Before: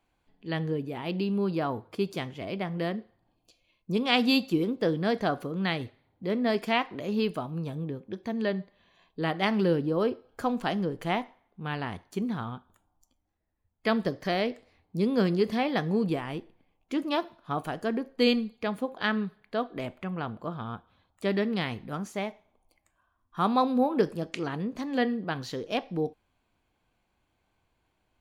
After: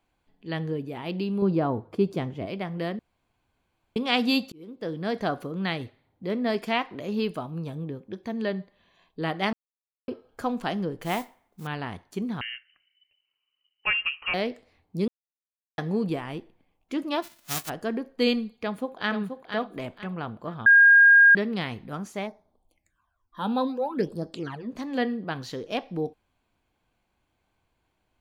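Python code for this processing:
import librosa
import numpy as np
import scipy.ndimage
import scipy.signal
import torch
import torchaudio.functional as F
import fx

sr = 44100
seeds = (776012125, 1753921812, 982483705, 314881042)

y = fx.tilt_shelf(x, sr, db=6.5, hz=1200.0, at=(1.42, 2.46))
y = fx.mod_noise(y, sr, seeds[0], snr_db=16, at=(11.01, 11.67))
y = fx.freq_invert(y, sr, carrier_hz=3000, at=(12.41, 14.34))
y = fx.envelope_flatten(y, sr, power=0.1, at=(17.22, 17.68), fade=0.02)
y = fx.echo_throw(y, sr, start_s=18.62, length_s=0.48, ms=480, feedback_pct=30, wet_db=-6.5)
y = fx.phaser_stages(y, sr, stages=12, low_hz=110.0, high_hz=2800.0, hz=fx.line((22.26, 0.28), (24.69, 1.1)), feedback_pct=25, at=(22.26, 24.69), fade=0.02)
y = fx.edit(y, sr, fx.room_tone_fill(start_s=2.99, length_s=0.97),
    fx.fade_in_span(start_s=4.52, length_s=0.72),
    fx.silence(start_s=9.53, length_s=0.55),
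    fx.silence(start_s=15.08, length_s=0.7),
    fx.bleep(start_s=20.66, length_s=0.69, hz=1620.0, db=-11.0), tone=tone)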